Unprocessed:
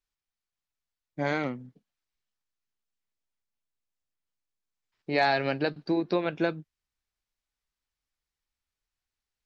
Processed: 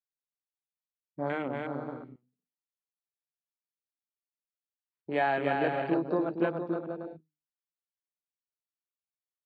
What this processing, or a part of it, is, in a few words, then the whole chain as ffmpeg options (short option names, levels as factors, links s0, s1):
over-cleaned archive recording: -af "highpass=120,lowpass=5500,equalizer=f=2100:t=o:w=0.24:g=-4,highshelf=f=3800:g=-6,bandreject=f=50:t=h:w=6,bandreject=f=100:t=h:w=6,bandreject=f=150:t=h:w=6,bandreject=f=200:t=h:w=6,bandreject=f=250:t=h:w=6,bandreject=f=300:t=h:w=6,aecho=1:1:290|464|568.4|631|668.6:0.631|0.398|0.251|0.158|0.1,afwtdn=0.0178,volume=0.75"